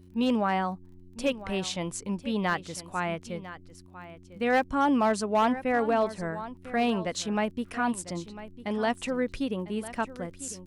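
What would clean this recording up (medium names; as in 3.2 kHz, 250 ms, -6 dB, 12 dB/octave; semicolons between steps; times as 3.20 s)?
clip repair -17.5 dBFS; de-click; de-hum 90.6 Hz, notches 4; inverse comb 1000 ms -15 dB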